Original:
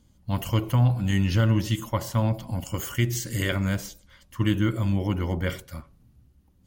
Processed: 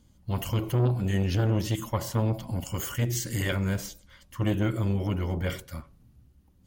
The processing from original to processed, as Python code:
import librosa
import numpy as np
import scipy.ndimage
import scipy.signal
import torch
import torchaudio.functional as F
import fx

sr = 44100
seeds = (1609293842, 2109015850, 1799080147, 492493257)

y = fx.transformer_sat(x, sr, knee_hz=370.0)